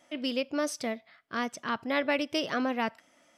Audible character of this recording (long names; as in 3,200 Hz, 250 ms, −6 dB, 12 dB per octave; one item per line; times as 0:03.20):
background noise floor −65 dBFS
spectral slope −3.0 dB per octave